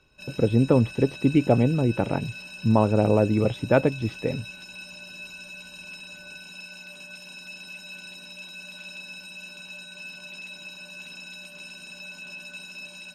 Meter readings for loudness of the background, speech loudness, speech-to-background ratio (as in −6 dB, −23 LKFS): −39.0 LKFS, −23.0 LKFS, 16.0 dB